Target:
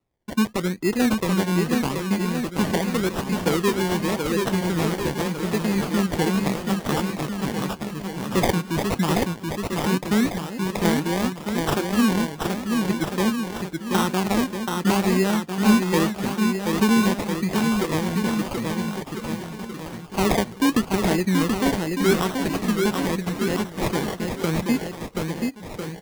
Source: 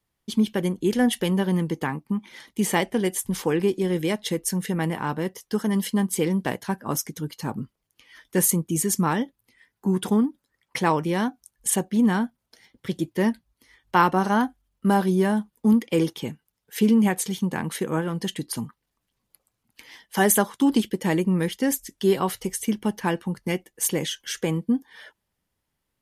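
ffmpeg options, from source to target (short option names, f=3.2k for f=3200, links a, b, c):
-filter_complex "[0:a]acrossover=split=490|3000[a][b][c];[b]acompressor=threshold=-24dB:ratio=6[d];[a][d][c]amix=inputs=3:normalize=0,acrusher=samples=27:mix=1:aa=0.000001:lfo=1:lforange=16.2:lforate=0.84,aecho=1:1:730|1350|1878|2326|2707:0.631|0.398|0.251|0.158|0.1"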